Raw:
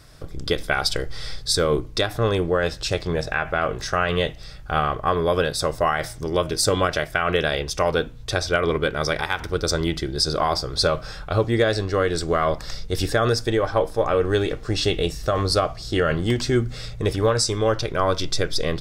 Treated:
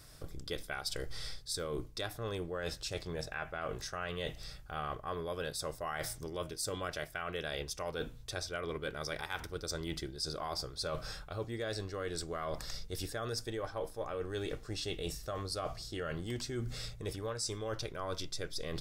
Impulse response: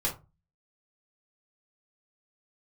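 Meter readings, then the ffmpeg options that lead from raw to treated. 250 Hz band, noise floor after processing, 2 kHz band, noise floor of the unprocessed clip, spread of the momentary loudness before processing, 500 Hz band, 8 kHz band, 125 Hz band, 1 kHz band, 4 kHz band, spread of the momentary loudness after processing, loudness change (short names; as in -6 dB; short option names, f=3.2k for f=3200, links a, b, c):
-17.0 dB, -51 dBFS, -16.5 dB, -38 dBFS, 6 LU, -17.5 dB, -12.5 dB, -17.0 dB, -17.5 dB, -15.0 dB, 4 LU, -16.5 dB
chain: -af "highshelf=f=6.9k:g=11,areverse,acompressor=threshold=-27dB:ratio=6,areverse,volume=-8.5dB"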